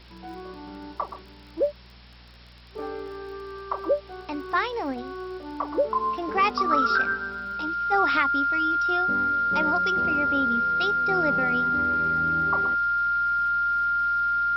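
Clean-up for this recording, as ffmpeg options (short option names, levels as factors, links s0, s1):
-af "adeclick=t=4,bandreject=f=59.6:t=h:w=4,bandreject=f=119.2:t=h:w=4,bandreject=f=178.8:t=h:w=4,bandreject=f=238.4:t=h:w=4,bandreject=f=1400:w=30,afwtdn=0.004"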